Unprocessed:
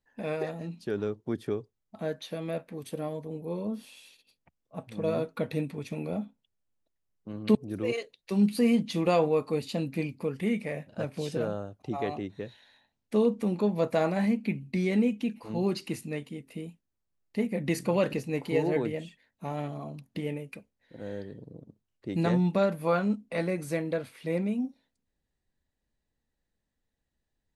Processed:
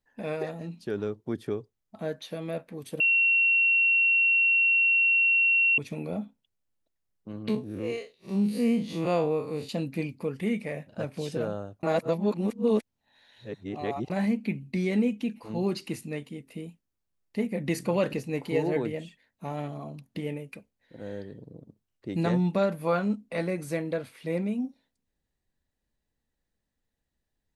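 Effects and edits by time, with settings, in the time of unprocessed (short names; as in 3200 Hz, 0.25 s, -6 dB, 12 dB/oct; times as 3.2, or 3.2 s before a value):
3–5.78 bleep 2730 Hz -19 dBFS
7.48–9.69 time blur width 0.102 s
11.83–14.1 reverse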